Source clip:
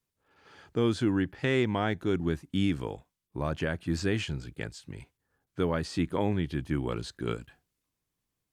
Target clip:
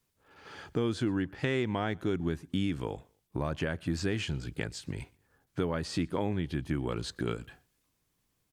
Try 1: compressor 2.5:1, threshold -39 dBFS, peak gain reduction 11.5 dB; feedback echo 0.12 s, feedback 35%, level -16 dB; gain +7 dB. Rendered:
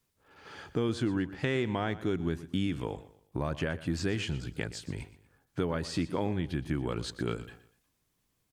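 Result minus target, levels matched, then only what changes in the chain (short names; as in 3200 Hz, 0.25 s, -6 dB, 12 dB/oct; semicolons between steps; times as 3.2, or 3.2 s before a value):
echo-to-direct +11.5 dB
change: feedback echo 0.12 s, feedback 35%, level -27.5 dB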